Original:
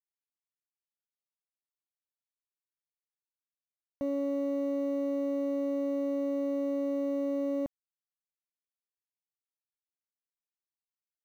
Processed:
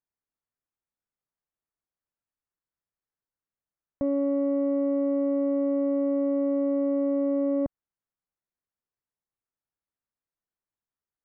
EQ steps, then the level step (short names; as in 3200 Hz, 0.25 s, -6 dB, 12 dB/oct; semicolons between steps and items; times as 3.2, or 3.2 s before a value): LPF 1800 Hz 24 dB/oct; low shelf 170 Hz +7 dB; +4.5 dB